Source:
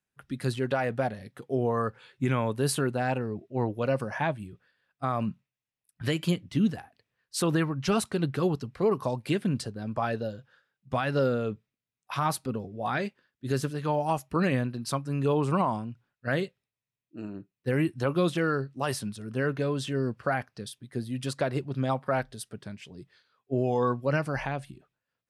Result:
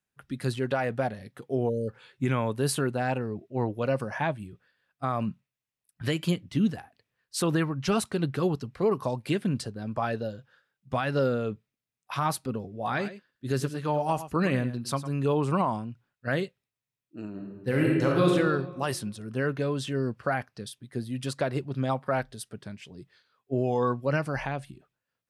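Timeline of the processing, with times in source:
0:01.69–0:01.89: time-frequency box erased 590–2,900 Hz
0:12.75–0:15.13: single-tap delay 106 ms −13 dB
0:17.30–0:18.30: thrown reverb, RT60 1.4 s, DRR −2 dB

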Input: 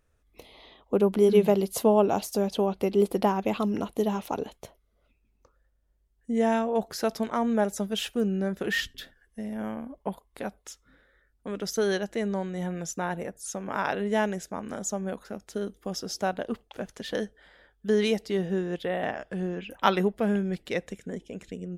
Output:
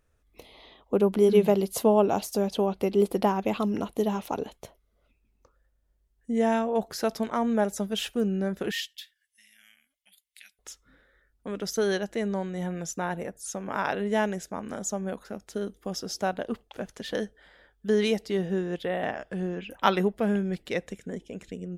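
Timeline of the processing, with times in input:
0:08.71–0:10.59: inverse Chebyshev high-pass filter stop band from 1,100 Hz

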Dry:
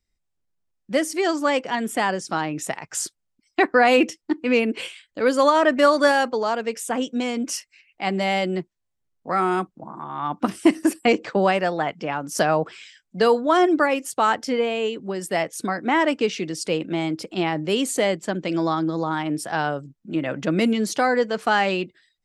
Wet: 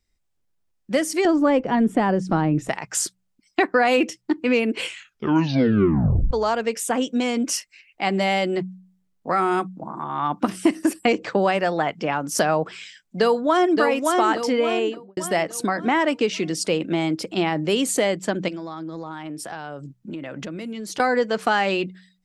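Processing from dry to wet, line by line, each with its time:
0:01.25–0:02.69: spectral tilt −4.5 dB per octave
0:04.82: tape stop 1.49 s
0:13.19–0:13.80: delay throw 570 ms, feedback 40%, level −4.5 dB
0:14.73–0:15.17: fade out and dull
0:18.48–0:21.00: downward compressor 10 to 1, threshold −33 dBFS
whole clip: hum removal 61.79 Hz, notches 3; downward compressor 2 to 1, threshold −23 dBFS; level +4 dB

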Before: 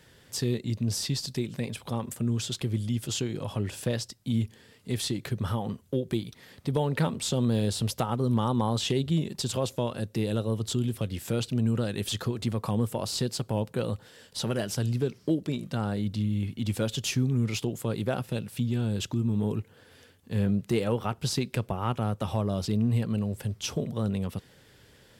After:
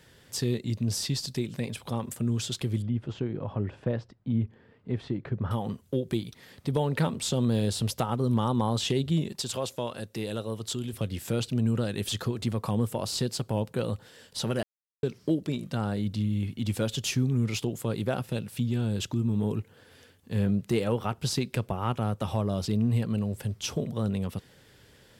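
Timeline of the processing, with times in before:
0:02.82–0:05.51: low-pass filter 1,500 Hz
0:09.32–0:10.93: low-shelf EQ 330 Hz −8.5 dB
0:14.63–0:15.03: silence

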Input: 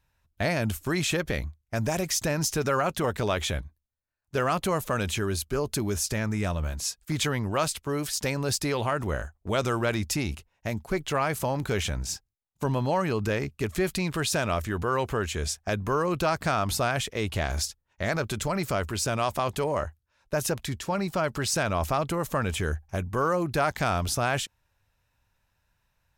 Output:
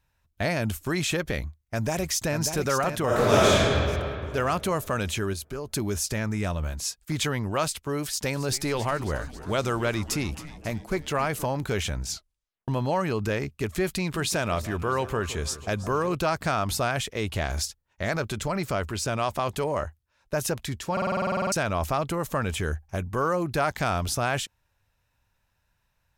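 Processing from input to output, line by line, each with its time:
0:01.38–0:02.36: delay throw 590 ms, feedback 45%, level −7 dB
0:03.05–0:03.63: thrown reverb, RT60 2.6 s, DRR −8.5 dB
0:05.33–0:05.73: downward compressor 2 to 1, threshold −34 dBFS
0:08.06–0:11.46: echo with shifted repeats 271 ms, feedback 63%, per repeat −140 Hz, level −15 dB
0:12.08: tape stop 0.60 s
0:13.96–0:16.15: delay that swaps between a low-pass and a high-pass 164 ms, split 1,000 Hz, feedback 67%, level −13.5 dB
0:18.30–0:19.43: high-shelf EQ 7,100 Hz −4.5 dB
0:20.92: stutter in place 0.05 s, 12 plays

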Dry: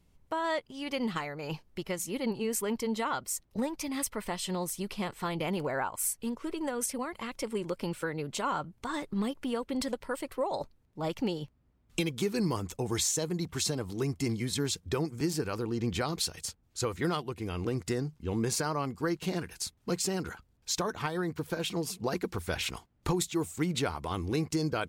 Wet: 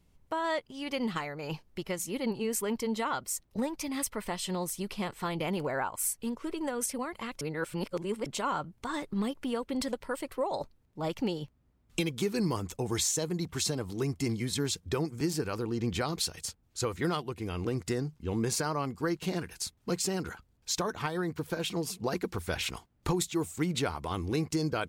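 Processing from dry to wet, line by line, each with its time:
0:07.41–0:08.26: reverse

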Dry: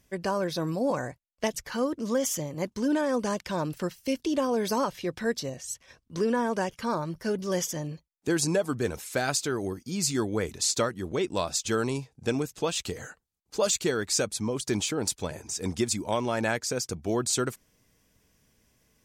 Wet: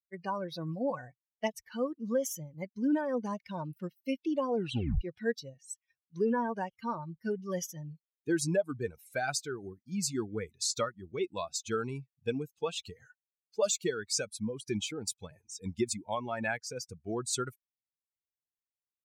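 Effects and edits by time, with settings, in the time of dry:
0:04.57: tape stop 0.44 s
whole clip: spectral dynamics exaggerated over time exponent 2; high-shelf EQ 7,200 Hz −4 dB

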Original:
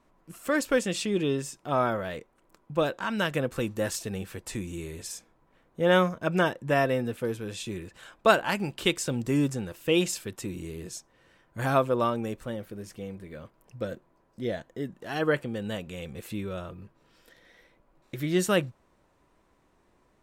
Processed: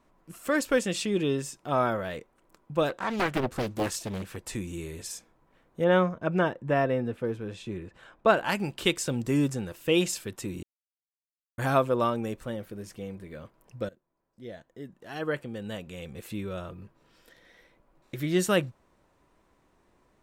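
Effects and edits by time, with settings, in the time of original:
0:02.89–0:04.36: highs frequency-modulated by the lows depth 0.94 ms
0:05.84–0:08.37: low-pass filter 1,600 Hz 6 dB per octave
0:10.63–0:11.58: silence
0:13.89–0:16.67: fade in, from −20.5 dB

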